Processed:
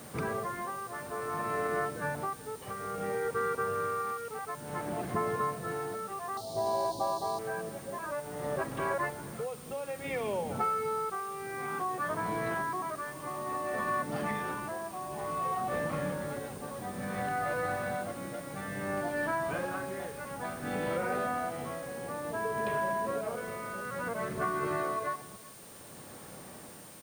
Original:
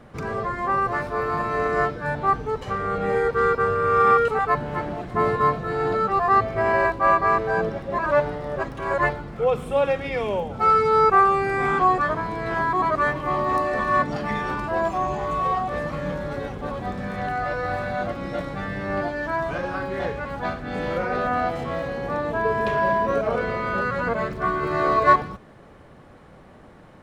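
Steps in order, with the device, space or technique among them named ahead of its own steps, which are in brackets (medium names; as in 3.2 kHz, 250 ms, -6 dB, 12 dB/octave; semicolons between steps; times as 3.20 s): medium wave at night (band-pass 110–4000 Hz; compression, threshold -29 dBFS, peak gain reduction 17 dB; tremolo 0.57 Hz, depth 59%; whistle 9 kHz -55 dBFS; white noise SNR 19 dB); 6.37–7.39 s: FFT filter 530 Hz 0 dB, 900 Hz +9 dB, 1.3 kHz -17 dB, 2.2 kHz -19 dB, 4.1 kHz +15 dB, 8.6 kHz +1 dB; delay 376 ms -22 dB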